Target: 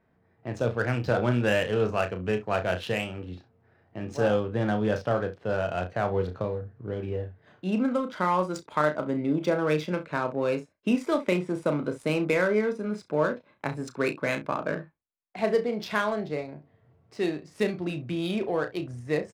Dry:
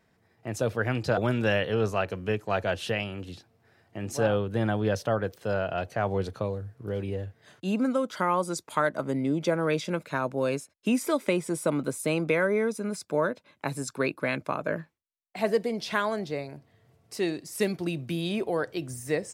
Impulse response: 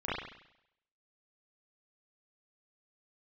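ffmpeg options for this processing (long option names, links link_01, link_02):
-af "aecho=1:1:33|66:0.447|0.178,adynamicsmooth=sensitivity=6:basefreq=2100"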